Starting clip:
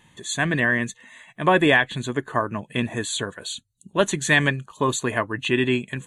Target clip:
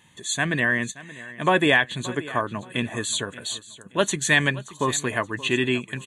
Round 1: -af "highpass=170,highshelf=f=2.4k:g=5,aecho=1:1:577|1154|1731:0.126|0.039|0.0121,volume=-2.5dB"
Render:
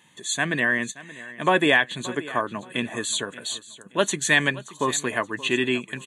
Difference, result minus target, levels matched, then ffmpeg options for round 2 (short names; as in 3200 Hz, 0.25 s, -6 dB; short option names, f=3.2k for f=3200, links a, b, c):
125 Hz band -4.5 dB
-af "highpass=45,highshelf=f=2.4k:g=5,aecho=1:1:577|1154|1731:0.126|0.039|0.0121,volume=-2.5dB"